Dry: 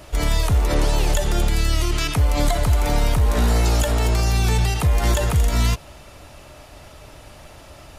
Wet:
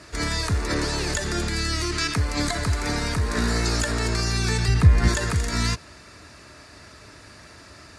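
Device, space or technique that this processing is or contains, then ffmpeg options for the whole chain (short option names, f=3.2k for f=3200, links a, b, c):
car door speaker: -filter_complex "[0:a]asettb=1/sr,asplit=3[a][b][c];[a]atrim=end=4.684[d];[b]atrim=start=4.68:end=5.08,asetpts=PTS-STARTPTS,afade=t=in:d=0.004:c=qsin,afade=t=out:st=0.396:d=0.004:c=qsin,bass=f=250:g=10,treble=f=4k:g=-6[e];[c]atrim=start=5.076[f];[d][e]acrossfade=d=0.004:c1=hsin:c2=qsin[g];[g][f]acrossfade=d=0.004:c1=qsin:c2=hsin,highpass=92,equalizer=f=140:t=q:w=4:g=-6,equalizer=f=560:t=q:w=4:g=-8,equalizer=f=800:t=q:w=4:g=-10,equalizer=f=1.7k:t=q:w=4:g=6,equalizer=f=3.1k:t=q:w=4:g=-9,equalizer=f=4.6k:t=q:w=4:g=6,lowpass=f=9.4k:w=0.5412,lowpass=f=9.4k:w=1.3066"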